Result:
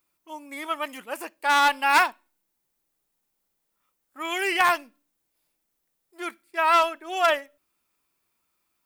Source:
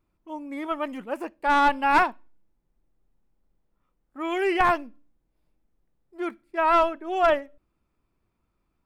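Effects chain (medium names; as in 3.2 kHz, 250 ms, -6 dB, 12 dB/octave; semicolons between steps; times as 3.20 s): tilt EQ +4.5 dB/octave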